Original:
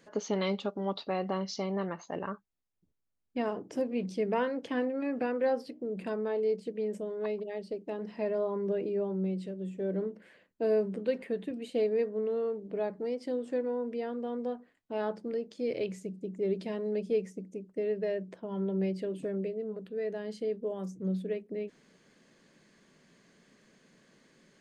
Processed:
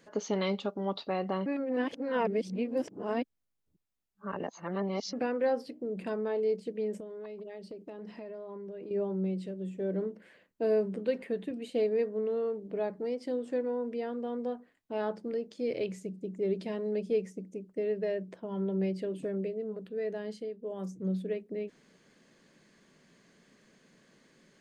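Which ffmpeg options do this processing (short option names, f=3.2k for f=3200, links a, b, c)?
-filter_complex "[0:a]asettb=1/sr,asplit=3[a][b][c];[a]atrim=end=7.004[d];[b]atrim=start=7:end=8.91,asetpts=PTS-STARTPTS,afade=t=in:d=0.004:c=qsin,afade=t=out:st=1.906:d=0.004:c=qsin,acompressor=threshold=-39dB:ratio=12:attack=3.2:release=140:knee=1:detection=peak[e];[c]atrim=start=8.906[f];[d][e]acrossfade=d=0.004:c1=hsin:c2=qsin[g];[g][f]acrossfade=d=0.004:c1=qsin:c2=hsin,asplit=5[h][i][j][k][l];[h]atrim=end=1.462[m];[i]atrim=start=1.458:end=5.132,asetpts=PTS-STARTPTS,areverse[n];[j]atrim=start=5.128:end=20.54,asetpts=PTS-STARTPTS,afade=t=out:st=15.152:d=0.26:silence=0.354813[o];[k]atrim=start=20.54:end=20.56,asetpts=PTS-STARTPTS,volume=-9dB[p];[l]atrim=start=20.56,asetpts=PTS-STARTPTS,afade=t=in:d=0.26:silence=0.354813[q];[m][n]acrossfade=d=0.004:c1=hsin:c2=hsin[r];[o][p][q]concat=n=3:v=0:a=1[s];[r][s]acrossfade=d=0.004:c1=hsin:c2=hsin"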